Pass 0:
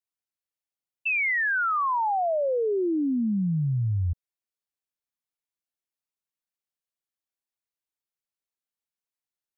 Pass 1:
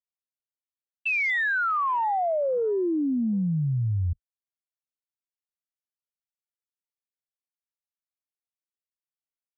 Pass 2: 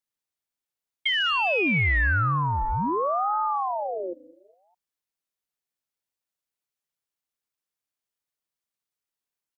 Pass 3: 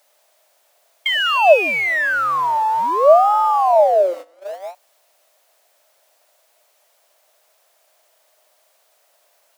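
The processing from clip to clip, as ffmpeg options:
-af "afwtdn=0.0112"
-filter_complex "[0:a]acrossover=split=200|860[s0][s1][s2];[s0]acompressor=threshold=0.01:ratio=4[s3];[s1]acompressor=threshold=0.0224:ratio=4[s4];[s2]acompressor=threshold=0.0355:ratio=4[s5];[s3][s4][s5]amix=inputs=3:normalize=0,aecho=1:1:204|408|612:0.0891|0.041|0.0189,aeval=exprs='val(0)*sin(2*PI*730*n/s+730*0.45/0.59*sin(2*PI*0.59*n/s))':c=same,volume=2.66"
-af "aeval=exprs='val(0)+0.5*0.0126*sgn(val(0))':c=same,highpass=f=620:t=q:w=6.6,agate=range=0.112:threshold=0.0224:ratio=16:detection=peak,volume=1.58"

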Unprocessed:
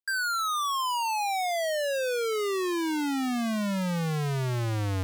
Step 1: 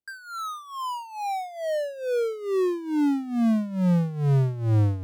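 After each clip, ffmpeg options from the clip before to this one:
-af "tiltshelf=f=820:g=9.5,tremolo=f=2.3:d=0.83,volume=1.19"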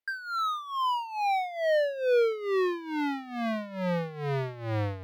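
-af "equalizer=f=125:t=o:w=1:g=-7,equalizer=f=250:t=o:w=1:g=-7,equalizer=f=500:t=o:w=1:g=7,equalizer=f=1000:t=o:w=1:g=4,equalizer=f=2000:t=o:w=1:g=11,equalizer=f=4000:t=o:w=1:g=8,equalizer=f=8000:t=o:w=1:g=-8,volume=0.596"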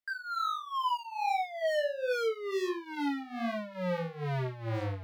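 -af "aeval=exprs='0.0631*(abs(mod(val(0)/0.0631+3,4)-2)-1)':c=same,flanger=delay=20:depth=6.6:speed=1.4"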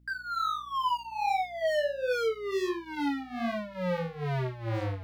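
-af "aeval=exprs='val(0)+0.000891*(sin(2*PI*60*n/s)+sin(2*PI*2*60*n/s)/2+sin(2*PI*3*60*n/s)/3+sin(2*PI*4*60*n/s)/4+sin(2*PI*5*60*n/s)/5)':c=same,volume=1.26"

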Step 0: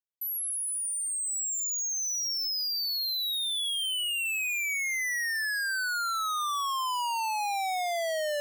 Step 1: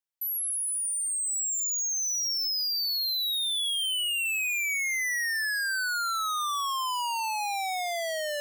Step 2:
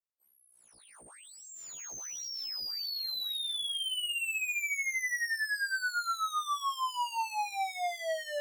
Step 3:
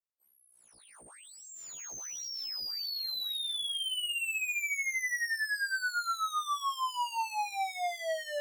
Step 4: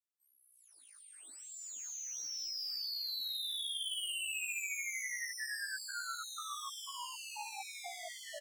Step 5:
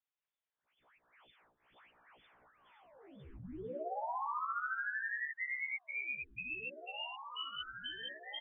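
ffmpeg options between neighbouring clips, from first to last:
-af "lowshelf=f=470:g=-11.5,volume=1.26"
-af "adynamicsmooth=sensitivity=6:basefreq=1200,afftfilt=real='re*1.73*eq(mod(b,3),0)':imag='im*1.73*eq(mod(b,3),0)':win_size=2048:overlap=0.75,volume=0.794"
-af anull
-af "equalizer=f=250:t=o:w=1:g=10,equalizer=f=500:t=o:w=1:g=-9,equalizer=f=1000:t=o:w=1:g=-7,equalizer=f=2000:t=o:w=1:g=-3,equalizer=f=8000:t=o:w=1:g=5,aecho=1:1:163.3|215.7|268.2:0.398|0.501|0.398,afftfilt=real='re*gte(b*sr/1024,250*pow(2100/250,0.5+0.5*sin(2*PI*2.1*pts/sr)))':imag='im*gte(b*sr/1024,250*pow(2100/250,0.5+0.5*sin(2*PI*2.1*pts/sr)))':win_size=1024:overlap=0.75,volume=0.501"
-af "lowpass=f=3200:t=q:w=0.5098,lowpass=f=3200:t=q:w=0.6013,lowpass=f=3200:t=q:w=0.9,lowpass=f=3200:t=q:w=2.563,afreqshift=-3800,volume=1.33"

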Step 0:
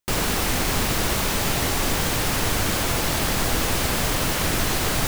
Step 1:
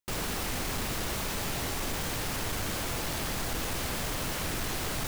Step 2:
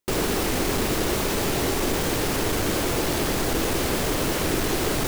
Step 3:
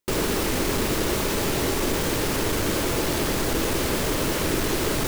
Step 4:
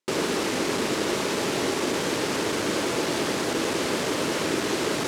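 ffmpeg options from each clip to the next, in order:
-af "asoftclip=type=tanh:threshold=0.126,volume=0.398"
-af "equalizer=f=370:w=1.2:g=9.5,volume=2.11"
-af "bandreject=f=740:w=12"
-af "highpass=190,lowpass=7900"

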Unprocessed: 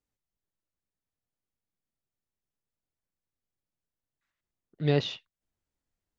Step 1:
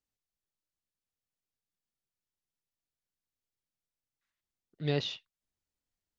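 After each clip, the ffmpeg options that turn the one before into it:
-af "equalizer=f=4900:w=0.6:g=5.5,volume=0.501"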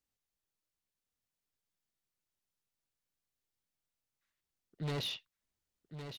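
-af "asoftclip=type=hard:threshold=0.0178,aecho=1:1:1111:0.355,volume=1.12"

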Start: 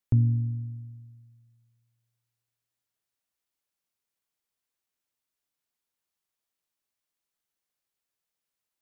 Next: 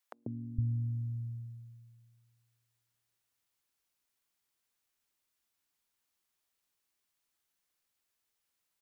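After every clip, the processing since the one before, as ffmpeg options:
-filter_complex "[0:a]acompressor=threshold=0.0141:ratio=2.5,acrossover=split=170|550[s0][s1][s2];[s1]adelay=140[s3];[s0]adelay=460[s4];[s4][s3][s2]amix=inputs=3:normalize=0,volume=1.58"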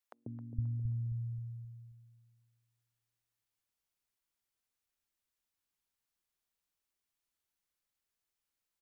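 -filter_complex "[0:a]lowshelf=f=91:g=8,asplit=2[s0][s1];[s1]adelay=266,lowpass=f=1500:p=1,volume=0.376,asplit=2[s2][s3];[s3]adelay=266,lowpass=f=1500:p=1,volume=0.42,asplit=2[s4][s5];[s5]adelay=266,lowpass=f=1500:p=1,volume=0.42,asplit=2[s6][s7];[s7]adelay=266,lowpass=f=1500:p=1,volume=0.42,asplit=2[s8][s9];[s9]adelay=266,lowpass=f=1500:p=1,volume=0.42[s10];[s0][s2][s4][s6][s8][s10]amix=inputs=6:normalize=0,volume=0.473"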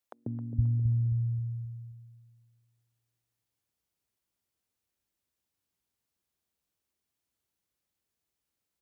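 -filter_complex "[0:a]highpass=f=48:w=0.5412,highpass=f=48:w=1.3066,asplit=2[s0][s1];[s1]adynamicsmooth=sensitivity=6:basefreq=810,volume=1.26[s2];[s0][s2]amix=inputs=2:normalize=0,volume=1.26"

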